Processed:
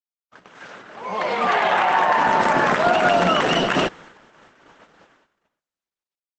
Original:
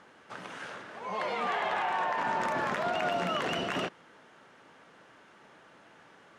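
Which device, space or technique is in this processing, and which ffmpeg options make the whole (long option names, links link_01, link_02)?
video call: -filter_complex "[0:a]asettb=1/sr,asplit=3[link_01][link_02][link_03];[link_01]atrim=end=2.234[link_04];[link_02]atrim=start=2.23:end=3.05,asetpts=PTS-STARTPTS,afade=type=in:duration=0.004:curve=qsin,afade=type=out:start_time=0.816:duration=0.004:curve=qsin,highpass=frequency=55:poles=1[link_05];[link_03]atrim=start=3.046[link_06];[link_04][link_05]acrossfade=duration=0.004:curve1=hsin:curve2=qsin[link_07];[link_07][link_06]acrossfade=duration=0.004:curve1=qsin:curve2=hsin,highpass=frequency=110:width=0.5412,highpass=frequency=110:width=1.3066,dynaudnorm=framelen=270:gausssize=9:maxgain=14.5dB,agate=range=-50dB:threshold=-41dB:ratio=16:detection=peak" -ar 48000 -c:a libopus -b:a 12k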